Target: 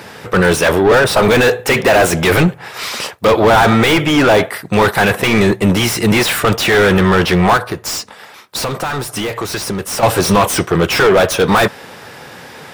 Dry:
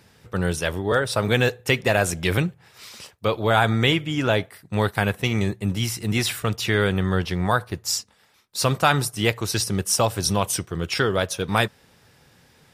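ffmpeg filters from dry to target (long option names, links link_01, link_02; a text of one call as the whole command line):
ffmpeg -i in.wav -filter_complex "[0:a]asplit=2[link_01][link_02];[link_02]highpass=frequency=720:poles=1,volume=33dB,asoftclip=type=tanh:threshold=-2.5dB[link_03];[link_01][link_03]amix=inputs=2:normalize=0,lowpass=frequency=1100:poles=1,volume=-6dB,highshelf=frequency=9300:gain=11.5,asettb=1/sr,asplit=3[link_04][link_05][link_06];[link_04]atrim=end=7.574[link_07];[link_05]atrim=start=7.57:end=10.03,asetpts=PTS-STARTPTS,afade=type=in:duration=0.004:curve=qsin,afade=type=out:start_time=2.456:duration=0.004:curve=qsin,acompressor=threshold=-21dB:ratio=5[link_08];[link_06]atrim=start=10.026[link_09];[link_07][link_08]acrossfade=duration=0.004:curve1=hsin:curve2=qsin[link_10];[link_10][link_09]acrossfade=duration=0.004:curve1=qsin:curve2=hsin,volume=2.5dB" out.wav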